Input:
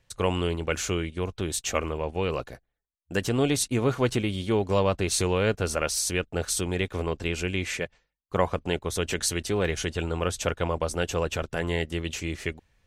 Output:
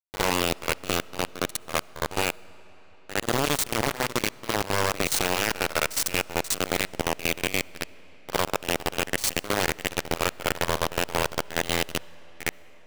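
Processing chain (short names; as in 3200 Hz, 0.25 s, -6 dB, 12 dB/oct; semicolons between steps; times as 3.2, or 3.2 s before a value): level quantiser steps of 14 dB; bit-crush 4-bit; pre-echo 60 ms -13 dB; on a send at -21.5 dB: reverb RT60 5.3 s, pre-delay 25 ms; on the sum: gain +4 dB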